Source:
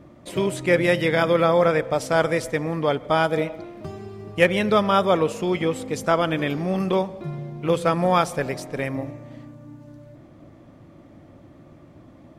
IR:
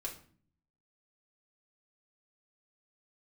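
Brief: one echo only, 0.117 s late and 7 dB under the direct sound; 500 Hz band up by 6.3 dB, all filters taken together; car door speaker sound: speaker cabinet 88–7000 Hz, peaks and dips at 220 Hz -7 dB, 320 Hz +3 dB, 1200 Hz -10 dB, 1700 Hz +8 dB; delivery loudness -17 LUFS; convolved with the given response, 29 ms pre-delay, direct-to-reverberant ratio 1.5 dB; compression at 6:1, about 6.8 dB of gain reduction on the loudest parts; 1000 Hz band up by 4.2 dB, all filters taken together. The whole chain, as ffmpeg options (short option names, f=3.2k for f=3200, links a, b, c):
-filter_complex "[0:a]equalizer=f=500:t=o:g=5.5,equalizer=f=1k:t=o:g=7,acompressor=threshold=-14dB:ratio=6,aecho=1:1:117:0.447,asplit=2[a][b];[1:a]atrim=start_sample=2205,adelay=29[c];[b][c]afir=irnorm=-1:irlink=0,volume=-0.5dB[d];[a][d]amix=inputs=2:normalize=0,highpass=88,equalizer=f=220:t=q:w=4:g=-7,equalizer=f=320:t=q:w=4:g=3,equalizer=f=1.2k:t=q:w=4:g=-10,equalizer=f=1.7k:t=q:w=4:g=8,lowpass=f=7k:w=0.5412,lowpass=f=7k:w=1.3066,volume=0.5dB"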